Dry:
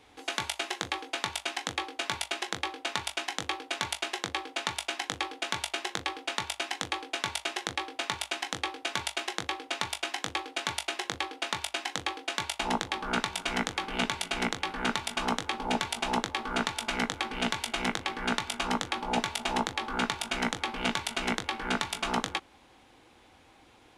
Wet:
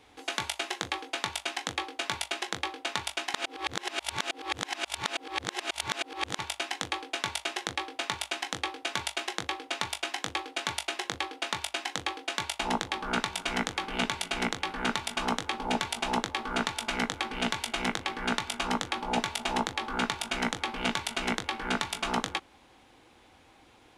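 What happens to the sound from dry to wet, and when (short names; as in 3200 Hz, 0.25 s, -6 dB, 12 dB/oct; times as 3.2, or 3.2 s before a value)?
3.34–6.39 reverse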